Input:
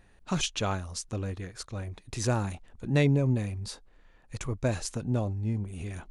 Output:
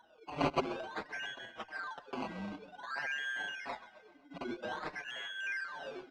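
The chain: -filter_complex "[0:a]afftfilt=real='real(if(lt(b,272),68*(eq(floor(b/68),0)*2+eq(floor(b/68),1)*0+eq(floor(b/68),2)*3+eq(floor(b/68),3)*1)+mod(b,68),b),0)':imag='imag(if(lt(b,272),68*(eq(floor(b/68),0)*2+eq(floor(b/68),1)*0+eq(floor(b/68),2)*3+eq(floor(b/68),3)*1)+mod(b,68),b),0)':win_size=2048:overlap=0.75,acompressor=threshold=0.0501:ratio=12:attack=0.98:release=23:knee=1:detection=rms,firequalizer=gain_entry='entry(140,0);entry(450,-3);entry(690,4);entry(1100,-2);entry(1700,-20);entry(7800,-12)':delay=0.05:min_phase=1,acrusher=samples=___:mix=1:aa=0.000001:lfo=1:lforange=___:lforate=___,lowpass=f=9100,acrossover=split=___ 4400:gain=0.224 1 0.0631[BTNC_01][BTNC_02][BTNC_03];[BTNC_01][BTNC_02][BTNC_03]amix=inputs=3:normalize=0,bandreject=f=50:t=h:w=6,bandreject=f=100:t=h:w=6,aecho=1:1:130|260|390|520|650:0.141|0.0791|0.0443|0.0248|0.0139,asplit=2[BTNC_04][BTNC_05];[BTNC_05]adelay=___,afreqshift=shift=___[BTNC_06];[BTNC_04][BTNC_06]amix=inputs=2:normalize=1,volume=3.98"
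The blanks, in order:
17, 17, 0.52, 180, 5.7, -1.3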